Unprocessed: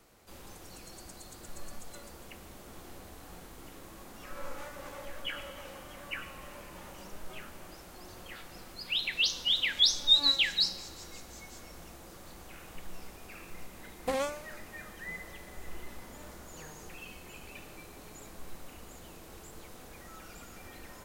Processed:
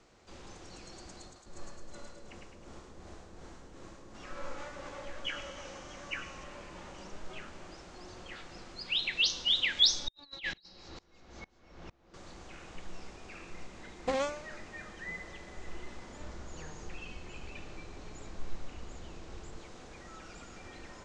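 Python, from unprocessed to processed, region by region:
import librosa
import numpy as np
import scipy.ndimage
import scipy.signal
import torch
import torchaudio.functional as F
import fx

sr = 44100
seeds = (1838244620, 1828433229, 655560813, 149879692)

y = fx.chain(x, sr, fx.peak_eq(hz=3000.0, db=-4.0, octaves=1.5),
    fx.tremolo(hz=2.7, depth=0.86),
    fx.echo_split(split_hz=550.0, low_ms=208, high_ms=105, feedback_pct=52, wet_db=-3.0), at=(1.25, 4.15))
y = fx.chain(y, sr, fx.peak_eq(hz=6000.0, db=8.0, octaves=0.46),
    fx.resample_bad(factor=2, down='filtered', up='zero_stuff'), at=(5.24, 6.44))
y = fx.chain(y, sr, fx.over_compress(threshold_db=-31.0, ratio=-0.5),
    fx.air_absorb(metres=150.0),
    fx.tremolo_decay(direction='swelling', hz=2.2, depth_db=28), at=(10.08, 12.14))
y = fx.chain(y, sr, fx.lowpass(hz=8300.0, slope=12),
    fx.low_shelf(hz=92.0, db=9.5), at=(16.2, 19.57))
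y = scipy.signal.sosfilt(scipy.signal.butter(6, 7300.0, 'lowpass', fs=sr, output='sos'), y)
y = fx.peak_eq(y, sr, hz=360.0, db=2.5, octaves=0.25)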